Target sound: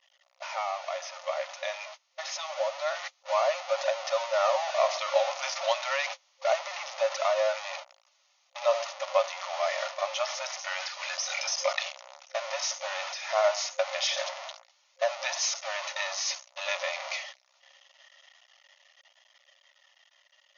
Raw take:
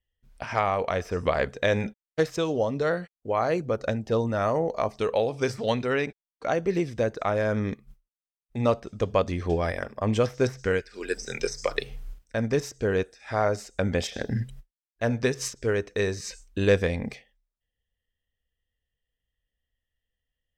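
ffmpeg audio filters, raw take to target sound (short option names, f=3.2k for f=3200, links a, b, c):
-af "aeval=exprs='val(0)+0.5*0.075*sgn(val(0))':c=same,bandreject=f=1.6k:w=5.1,agate=range=-26dB:threshold=-28dB:ratio=16:detection=peak,dynaudnorm=f=510:g=11:m=16dB,flanger=delay=1.1:depth=3.6:regen=-57:speed=0.26:shape=triangular,afftfilt=real='re*between(b*sr/4096,530,6800)':imag='im*between(b*sr/4096,530,6800)':win_size=4096:overlap=0.75,volume=-5.5dB"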